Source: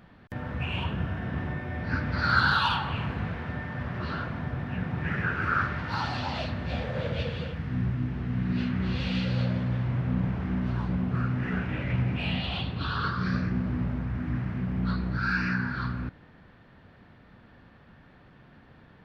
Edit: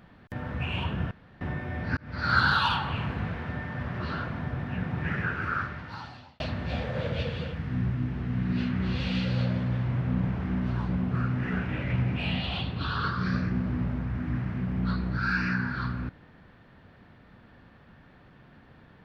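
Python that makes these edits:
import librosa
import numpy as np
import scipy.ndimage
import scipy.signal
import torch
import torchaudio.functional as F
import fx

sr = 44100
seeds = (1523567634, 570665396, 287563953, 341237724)

y = fx.edit(x, sr, fx.room_tone_fill(start_s=1.11, length_s=0.3),
    fx.fade_in_span(start_s=1.97, length_s=0.38),
    fx.fade_out_span(start_s=5.08, length_s=1.32), tone=tone)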